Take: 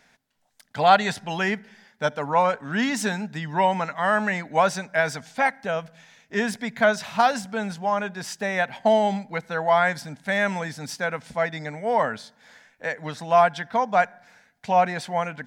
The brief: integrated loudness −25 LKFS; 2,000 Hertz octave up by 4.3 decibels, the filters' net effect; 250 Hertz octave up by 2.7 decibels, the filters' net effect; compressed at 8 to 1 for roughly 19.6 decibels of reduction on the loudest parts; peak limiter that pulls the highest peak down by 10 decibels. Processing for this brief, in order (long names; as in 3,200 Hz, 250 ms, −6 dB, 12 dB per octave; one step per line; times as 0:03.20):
parametric band 250 Hz +3.5 dB
parametric band 2,000 Hz +5.5 dB
downward compressor 8 to 1, threshold −32 dBFS
level +14.5 dB
brickwall limiter −15 dBFS